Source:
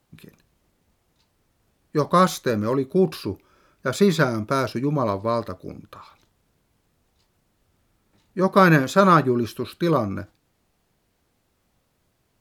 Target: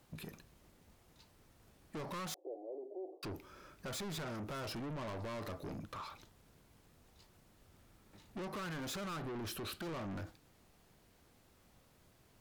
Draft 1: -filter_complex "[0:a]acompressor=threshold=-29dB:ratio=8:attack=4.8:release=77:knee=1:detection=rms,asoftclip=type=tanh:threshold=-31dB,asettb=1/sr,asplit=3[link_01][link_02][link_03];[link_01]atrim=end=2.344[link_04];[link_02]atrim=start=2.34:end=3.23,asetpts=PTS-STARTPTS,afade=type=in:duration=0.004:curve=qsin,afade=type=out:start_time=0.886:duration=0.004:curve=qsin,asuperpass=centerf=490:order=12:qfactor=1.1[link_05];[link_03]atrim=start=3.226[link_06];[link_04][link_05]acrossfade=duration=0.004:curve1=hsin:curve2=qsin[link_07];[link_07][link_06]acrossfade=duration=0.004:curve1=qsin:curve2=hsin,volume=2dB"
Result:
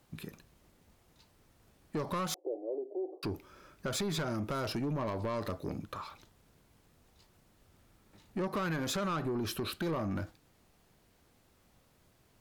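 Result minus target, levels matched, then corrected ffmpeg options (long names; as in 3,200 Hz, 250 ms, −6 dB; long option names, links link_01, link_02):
soft clipping: distortion −8 dB
-filter_complex "[0:a]acompressor=threshold=-29dB:ratio=8:attack=4.8:release=77:knee=1:detection=rms,asoftclip=type=tanh:threshold=-42.5dB,asettb=1/sr,asplit=3[link_01][link_02][link_03];[link_01]atrim=end=2.344[link_04];[link_02]atrim=start=2.34:end=3.23,asetpts=PTS-STARTPTS,afade=type=in:duration=0.004:curve=qsin,afade=type=out:start_time=0.886:duration=0.004:curve=qsin,asuperpass=centerf=490:order=12:qfactor=1.1[link_05];[link_03]atrim=start=3.226[link_06];[link_04][link_05]acrossfade=duration=0.004:curve1=hsin:curve2=qsin[link_07];[link_07][link_06]acrossfade=duration=0.004:curve1=qsin:curve2=hsin,volume=2dB"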